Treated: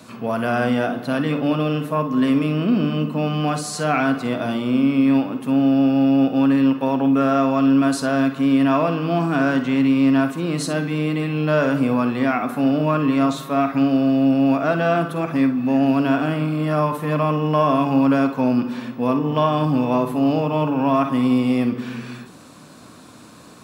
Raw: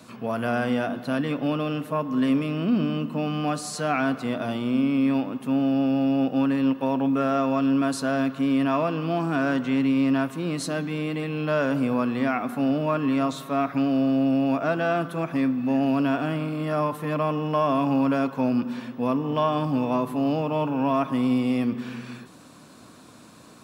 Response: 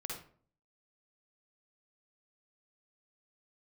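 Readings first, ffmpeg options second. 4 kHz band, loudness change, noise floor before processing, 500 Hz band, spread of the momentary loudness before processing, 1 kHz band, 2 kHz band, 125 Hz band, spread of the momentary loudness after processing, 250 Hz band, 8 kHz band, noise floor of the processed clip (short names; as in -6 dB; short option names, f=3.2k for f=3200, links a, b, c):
+4.5 dB, +5.5 dB, -48 dBFS, +4.5 dB, 6 LU, +5.0 dB, +5.0 dB, +6.5 dB, 6 LU, +5.5 dB, +4.5 dB, -43 dBFS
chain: -filter_complex "[0:a]asplit=2[a][b];[1:a]atrim=start_sample=2205,atrim=end_sample=3087[c];[b][c]afir=irnorm=-1:irlink=0,volume=0.5dB[d];[a][d]amix=inputs=2:normalize=0"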